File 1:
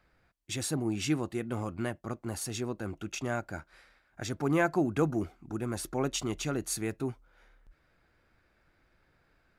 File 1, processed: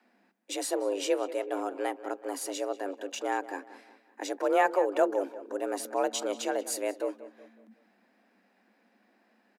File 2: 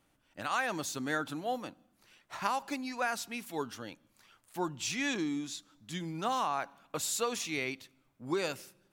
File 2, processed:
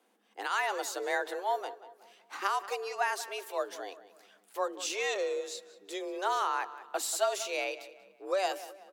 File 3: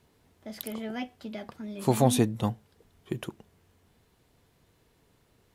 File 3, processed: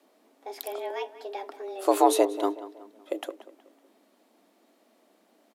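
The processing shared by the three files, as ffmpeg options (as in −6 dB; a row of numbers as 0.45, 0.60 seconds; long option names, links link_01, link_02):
-filter_complex "[0:a]equalizer=frequency=520:width=2:gain=6,afreqshift=190,asplit=2[link_01][link_02];[link_02]adelay=186,lowpass=frequency=3500:poles=1,volume=-15dB,asplit=2[link_03][link_04];[link_04]adelay=186,lowpass=frequency=3500:poles=1,volume=0.42,asplit=2[link_05][link_06];[link_06]adelay=186,lowpass=frequency=3500:poles=1,volume=0.42,asplit=2[link_07][link_08];[link_08]adelay=186,lowpass=frequency=3500:poles=1,volume=0.42[link_09];[link_03][link_05][link_07][link_09]amix=inputs=4:normalize=0[link_10];[link_01][link_10]amix=inputs=2:normalize=0"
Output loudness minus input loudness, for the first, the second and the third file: +2.0, +1.5, +2.0 LU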